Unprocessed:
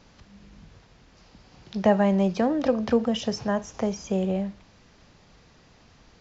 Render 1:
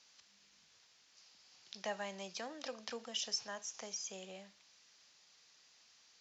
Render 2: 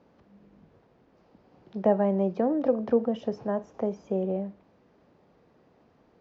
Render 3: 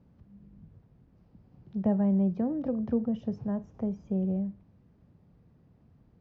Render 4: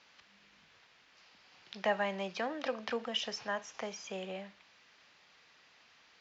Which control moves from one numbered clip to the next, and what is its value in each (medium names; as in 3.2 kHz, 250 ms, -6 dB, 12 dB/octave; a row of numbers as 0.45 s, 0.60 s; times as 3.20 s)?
band-pass filter, frequency: 6.8 kHz, 420 Hz, 130 Hz, 2.5 kHz